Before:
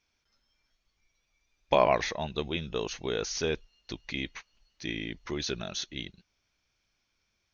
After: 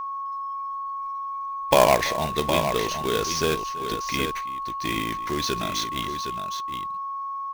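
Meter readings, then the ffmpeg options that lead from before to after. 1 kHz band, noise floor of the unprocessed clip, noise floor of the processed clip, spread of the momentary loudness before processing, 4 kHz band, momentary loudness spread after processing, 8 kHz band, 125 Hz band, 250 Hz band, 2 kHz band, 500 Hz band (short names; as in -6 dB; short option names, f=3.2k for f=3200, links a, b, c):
+11.5 dB, -78 dBFS, -31 dBFS, 15 LU, +7.5 dB, 11 LU, n/a, +6.5 dB, +6.5 dB, +7.0 dB, +6.5 dB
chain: -af "acrusher=bits=2:mode=log:mix=0:aa=0.000001,aecho=1:1:45|332|763:0.119|0.126|0.398,aeval=exprs='val(0)+0.02*sin(2*PI*1100*n/s)':c=same,volume=5.5dB"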